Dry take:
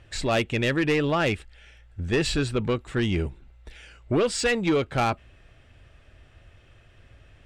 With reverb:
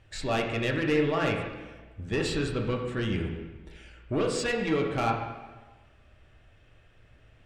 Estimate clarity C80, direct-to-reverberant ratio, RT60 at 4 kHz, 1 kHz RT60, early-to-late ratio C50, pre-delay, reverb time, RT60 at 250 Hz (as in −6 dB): 6.0 dB, 0.0 dB, 1.1 s, 1.3 s, 4.0 dB, 4 ms, 1.3 s, 1.3 s